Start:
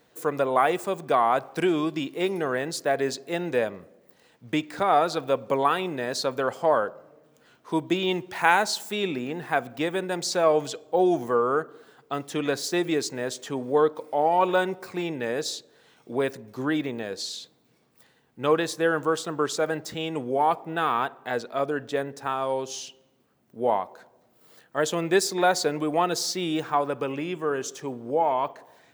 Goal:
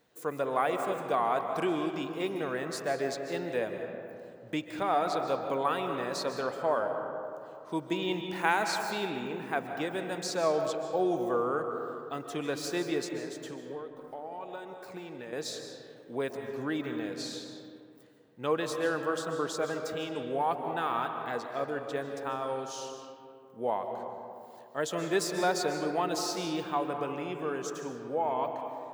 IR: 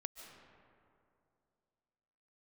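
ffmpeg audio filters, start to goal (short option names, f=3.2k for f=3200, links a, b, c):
-filter_complex "[0:a]asettb=1/sr,asplit=3[a][b][c];[a]atrim=end=13.044[d];[b]atrim=start=13.04:end=15.33,asetpts=PTS-STARTPTS,afade=t=in:d=0.004:c=qsin,afade=t=out:st=2.286:d=0.004:c=qsin,acompressor=threshold=-34dB:ratio=4[e];[c]atrim=start=15.326[f];[d][e]acrossfade=d=0.004:c1=hsin:c2=qsin[g];[g][f]acrossfade=d=0.004:c1=qsin:c2=hsin[h];[1:a]atrim=start_sample=2205[i];[h][i]afir=irnorm=-1:irlink=0,volume=-3dB"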